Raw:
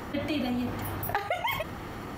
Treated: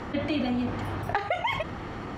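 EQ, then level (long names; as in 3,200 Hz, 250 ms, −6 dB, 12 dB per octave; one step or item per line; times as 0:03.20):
high-frequency loss of the air 93 metres
+2.5 dB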